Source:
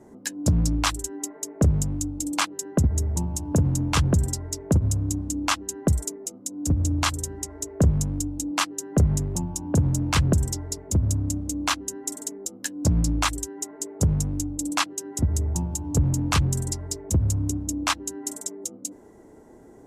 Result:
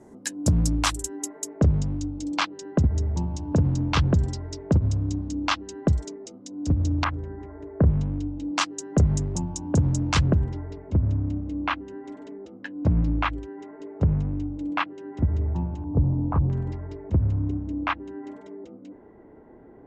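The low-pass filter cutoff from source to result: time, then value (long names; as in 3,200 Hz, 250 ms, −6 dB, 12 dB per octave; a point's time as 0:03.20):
low-pass filter 24 dB per octave
12,000 Hz
from 0:01.53 5,000 Hz
from 0:07.04 2,000 Hz
from 0:07.89 3,300 Hz
from 0:08.45 7,000 Hz
from 0:10.30 2,700 Hz
from 0:15.84 1,000 Hz
from 0:16.50 2,500 Hz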